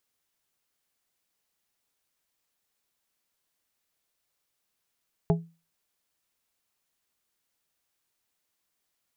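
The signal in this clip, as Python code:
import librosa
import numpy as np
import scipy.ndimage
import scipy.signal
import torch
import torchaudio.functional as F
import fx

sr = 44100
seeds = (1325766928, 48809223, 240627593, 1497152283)

y = fx.strike_glass(sr, length_s=0.89, level_db=-17.0, body='plate', hz=166.0, decay_s=0.31, tilt_db=4.0, modes=4)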